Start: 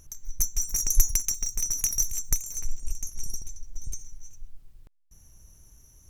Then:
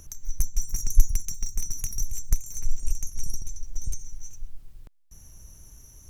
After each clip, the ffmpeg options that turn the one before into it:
-filter_complex "[0:a]acrossover=split=210[a][b];[b]acompressor=threshold=-45dB:ratio=2.5[c];[a][c]amix=inputs=2:normalize=0,volume=5.5dB"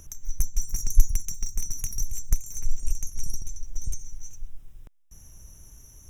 -af "asuperstop=centerf=4400:order=4:qfactor=4.2"

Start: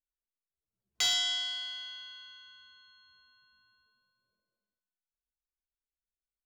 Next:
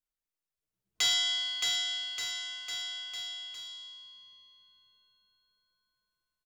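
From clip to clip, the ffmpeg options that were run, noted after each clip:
-filter_complex "[0:a]aecho=1:1:6.4:0.41,asplit=2[a][b];[b]aecho=0:1:620|1178|1680|2132|2539:0.631|0.398|0.251|0.158|0.1[c];[a][c]amix=inputs=2:normalize=0"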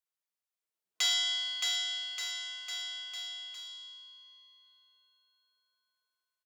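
-filter_complex "[0:a]highpass=520,asplit=2[a][b];[b]adelay=1108,volume=-28dB,highshelf=f=4k:g=-24.9[c];[a][c]amix=inputs=2:normalize=0,volume=-1.5dB"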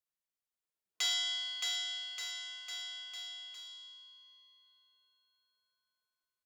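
-af "lowshelf=f=330:g=4.5,volume=-4dB"

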